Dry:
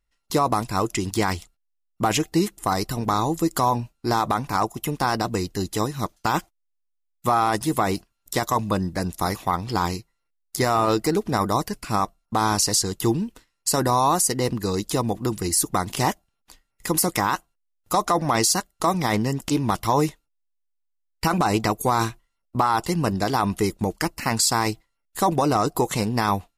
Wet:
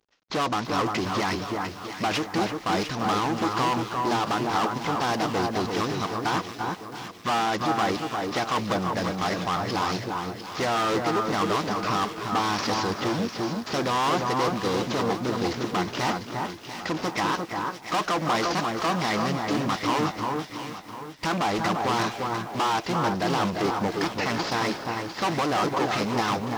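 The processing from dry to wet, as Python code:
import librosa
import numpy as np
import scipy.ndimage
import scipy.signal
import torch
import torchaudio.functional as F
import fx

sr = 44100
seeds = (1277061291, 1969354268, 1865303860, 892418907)

y = fx.cvsd(x, sr, bps=32000)
y = np.clip(y, -10.0 ** (-26.0 / 20.0), 10.0 ** (-26.0 / 20.0))
y = fx.highpass(y, sr, hz=280.0, slope=6)
y = fx.echo_alternate(y, sr, ms=350, hz=1700.0, feedback_pct=57, wet_db=-3.5)
y = fx.echo_crushed(y, sr, ms=333, feedback_pct=55, bits=8, wet_db=-11.0)
y = F.gain(torch.from_numpy(y), 4.5).numpy()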